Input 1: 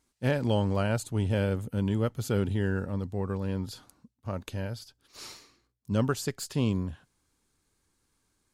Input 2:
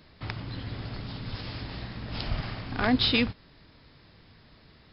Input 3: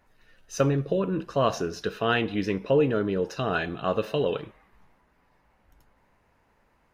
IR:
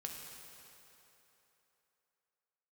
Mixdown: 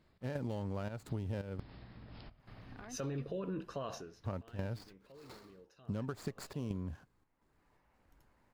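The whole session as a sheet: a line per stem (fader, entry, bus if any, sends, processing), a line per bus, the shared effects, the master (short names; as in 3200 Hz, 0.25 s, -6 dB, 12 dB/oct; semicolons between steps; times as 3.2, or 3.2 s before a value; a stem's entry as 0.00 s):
+1.0 dB, 0.00 s, muted 1.6–4.22, bus A, no send, median filter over 15 samples
-13.5 dB, 0.00 s, bus A, no send, high shelf 2900 Hz -10.5 dB; compressor 10:1, threshold -34 dBFS, peak gain reduction 15.5 dB
-8.0 dB, 2.40 s, no bus, no send, limiter -21.5 dBFS, peak gain reduction 11.5 dB; auto duck -20 dB, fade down 0.35 s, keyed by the first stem
bus A: 0.0 dB, step gate "x.xxx.xx.xxx" 85 bpm -12 dB; compressor, threshold -29 dBFS, peak gain reduction 9 dB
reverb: off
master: compressor 6:1, threshold -35 dBFS, peak gain reduction 7.5 dB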